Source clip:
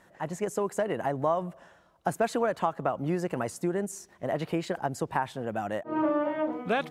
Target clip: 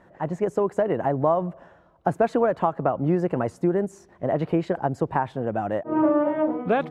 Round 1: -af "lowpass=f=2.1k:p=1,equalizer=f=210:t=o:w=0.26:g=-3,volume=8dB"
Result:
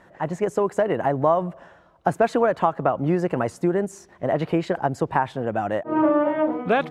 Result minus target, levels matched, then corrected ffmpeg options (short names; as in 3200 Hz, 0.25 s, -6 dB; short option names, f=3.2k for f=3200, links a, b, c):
2000 Hz band +3.5 dB
-af "lowpass=f=810:p=1,equalizer=f=210:t=o:w=0.26:g=-3,volume=8dB"